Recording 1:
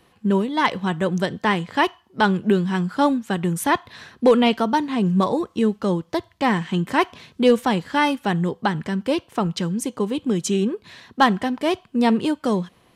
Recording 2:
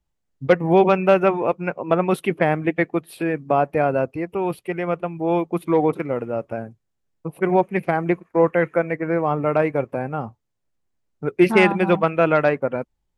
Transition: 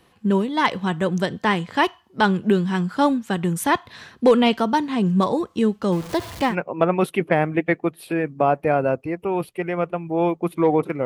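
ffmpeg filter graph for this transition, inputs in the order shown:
-filter_complex "[0:a]asettb=1/sr,asplit=3[a][b][c];[a]atrim=end=5.924[d];[b]atrim=start=5.92:end=6.56,asetpts=PTS-STARTPTS,afade=t=in:d=0.004:c=qsin,afade=t=out:st=0.636:d=0.004:c=qsin,aeval=exprs='val(0)+0.5*0.0299*sgn(val(0))':c=same[e];[c]atrim=start=6.556[f];[d][e]acrossfade=d=0.004:c1=hsin:c2=qsin[g];[g][f]acrossfade=d=0.004:c1=qsin:c2=hsin,apad=whole_dur=11.05,atrim=end=11.05,atrim=end=6.56,asetpts=PTS-STARTPTS[h];[1:a]atrim=start=1.54:end=6.15,asetpts=PTS-STARTPTS[i];[h][i]acrossfade=d=0.12:c1=tri:c2=tri"

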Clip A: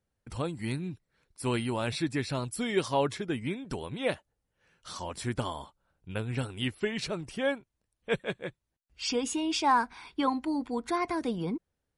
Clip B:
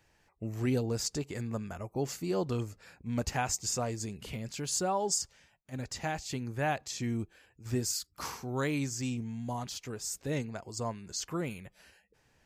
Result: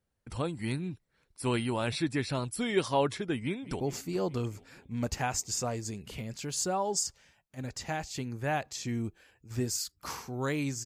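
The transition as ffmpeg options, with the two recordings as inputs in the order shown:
-filter_complex "[0:a]apad=whole_dur=10.85,atrim=end=10.85,atrim=end=3.802[a];[1:a]atrim=start=1.948:end=9[b];[a][b]acrossfade=d=0.004:c1=hsin:c2=hsin,asplit=2[c][d];[d]afade=t=in:st=3.41:d=0.01,afade=t=out:st=3.8:d=0.01,aecho=0:1:210|420|630|840|1050|1260|1470|1680|1890|2100:0.16788|0.12591|0.0944327|0.0708245|0.0531184|0.0398388|0.0298791|0.0224093|0.016807|0.0126052[e];[c][e]amix=inputs=2:normalize=0"

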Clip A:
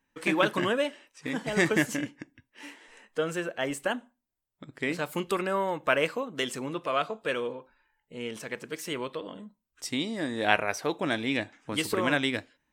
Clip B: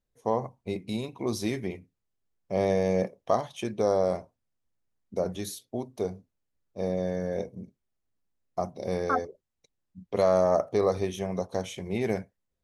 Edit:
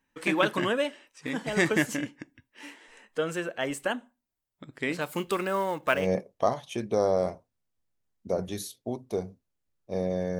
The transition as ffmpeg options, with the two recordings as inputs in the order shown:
-filter_complex "[0:a]asettb=1/sr,asplit=3[a][b][c];[a]atrim=end=5.014[d];[b]atrim=start=5.01:end=6.09,asetpts=PTS-STARTPTS,afade=t=in:d=0.004:c=qsin,afade=t=out:st=1.076:d=0.004:c=qsin,acrusher=bits=6:mode=log:mix=0:aa=0.000001[e];[c]atrim=start=6.086[f];[d][e]acrossfade=d=0.004:c1=hsin:c2=qsin[g];[g][f]acrossfade=d=0.004:c1=qsin:c2=hsin,apad=whole_dur=10.39,atrim=end=10.39,atrim=end=6.09,asetpts=PTS-STARTPTS[h];[1:a]atrim=start=2.78:end=7.26,asetpts=PTS-STARTPTS[i];[h][i]acrossfade=d=0.18:c1=tri:c2=tri"

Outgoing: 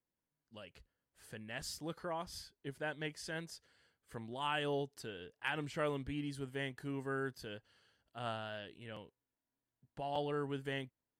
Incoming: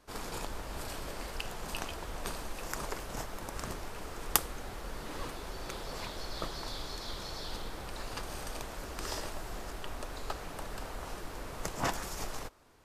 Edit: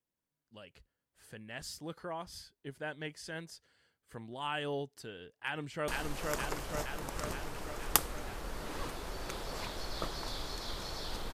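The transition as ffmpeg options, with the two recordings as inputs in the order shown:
-filter_complex "[0:a]apad=whole_dur=11.33,atrim=end=11.33,atrim=end=5.882[a];[1:a]atrim=start=2.278:end=7.73[b];[a][b]acrossfade=d=0.004:c1=hsin:c2=hsin,asplit=2[c][d];[d]afade=t=in:st=5.39:d=0.01,afade=t=out:st=5.88:d=0.01,aecho=0:1:470|940|1410|1880|2350|2820|3290|3760|4230|4700|5170|5640:0.841395|0.588977|0.412284|0.288599|0.202019|0.141413|0.0989893|0.0692925|0.0485048|0.0339533|0.0237673|0.0166371[e];[c][e]amix=inputs=2:normalize=0"

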